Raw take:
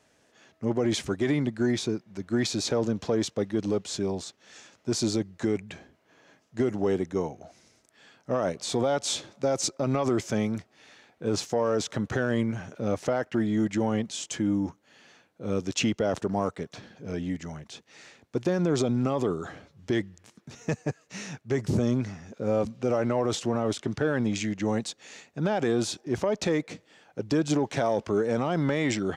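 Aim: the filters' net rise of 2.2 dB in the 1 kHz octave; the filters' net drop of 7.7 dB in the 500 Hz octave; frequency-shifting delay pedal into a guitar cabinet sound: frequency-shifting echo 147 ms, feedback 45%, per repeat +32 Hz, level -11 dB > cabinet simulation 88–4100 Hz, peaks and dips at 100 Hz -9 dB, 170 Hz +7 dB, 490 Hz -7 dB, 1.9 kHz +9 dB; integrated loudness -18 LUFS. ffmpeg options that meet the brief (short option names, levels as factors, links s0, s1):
-filter_complex "[0:a]equalizer=f=500:t=o:g=-8.5,equalizer=f=1000:t=o:g=6,asplit=6[s0][s1][s2][s3][s4][s5];[s1]adelay=147,afreqshift=32,volume=0.282[s6];[s2]adelay=294,afreqshift=64,volume=0.127[s7];[s3]adelay=441,afreqshift=96,volume=0.0569[s8];[s4]adelay=588,afreqshift=128,volume=0.0257[s9];[s5]adelay=735,afreqshift=160,volume=0.0116[s10];[s0][s6][s7][s8][s9][s10]amix=inputs=6:normalize=0,highpass=88,equalizer=f=100:t=q:w=4:g=-9,equalizer=f=170:t=q:w=4:g=7,equalizer=f=490:t=q:w=4:g=-7,equalizer=f=1900:t=q:w=4:g=9,lowpass=f=4100:w=0.5412,lowpass=f=4100:w=1.3066,volume=3.98"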